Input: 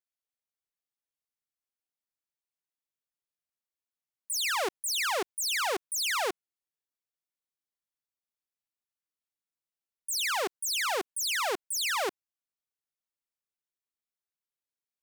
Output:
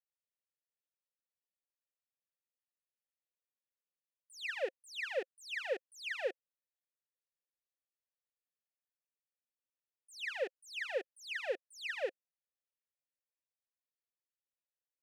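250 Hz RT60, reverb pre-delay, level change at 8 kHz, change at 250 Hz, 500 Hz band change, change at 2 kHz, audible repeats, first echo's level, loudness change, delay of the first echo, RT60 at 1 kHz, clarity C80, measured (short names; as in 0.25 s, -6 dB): none, none, -25.5 dB, -12.5 dB, -3.5 dB, -8.0 dB, none, none, -10.5 dB, none, none, none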